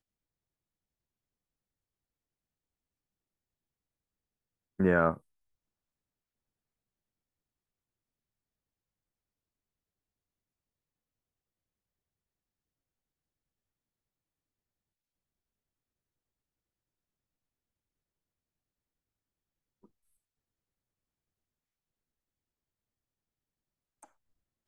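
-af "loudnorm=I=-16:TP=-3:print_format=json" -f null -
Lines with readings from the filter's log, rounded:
"input_i" : "-27.9",
"input_tp" : "-11.9",
"input_lra" : "5.1",
"input_thresh" : "-43.1",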